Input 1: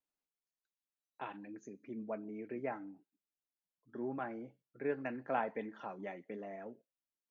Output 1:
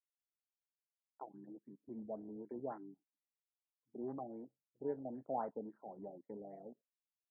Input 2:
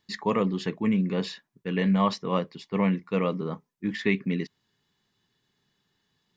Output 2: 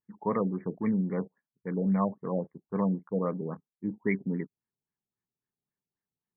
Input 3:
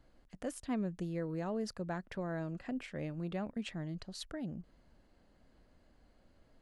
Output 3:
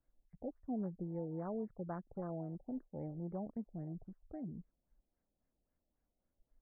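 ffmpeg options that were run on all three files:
-af "afwtdn=0.00891,afftfilt=real='re*lt(b*sr/1024,800*pow(2400/800,0.5+0.5*sin(2*PI*3.7*pts/sr)))':imag='im*lt(b*sr/1024,800*pow(2400/800,0.5+0.5*sin(2*PI*3.7*pts/sr)))':win_size=1024:overlap=0.75,volume=0.668"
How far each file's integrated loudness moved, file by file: -4.0 LU, -4.0 LU, -4.0 LU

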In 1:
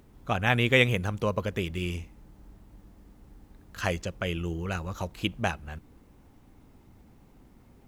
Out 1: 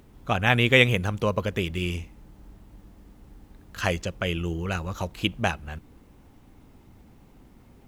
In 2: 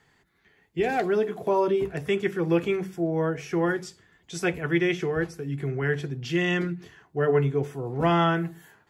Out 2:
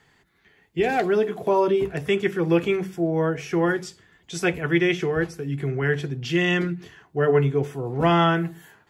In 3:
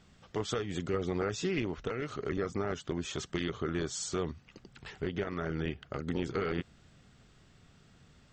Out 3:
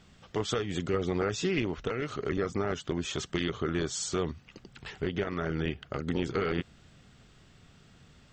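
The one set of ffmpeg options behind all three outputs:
-af "equalizer=f=3000:t=o:w=0.77:g=2,volume=1.41"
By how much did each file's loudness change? +3.5 LU, +3.0 LU, +3.0 LU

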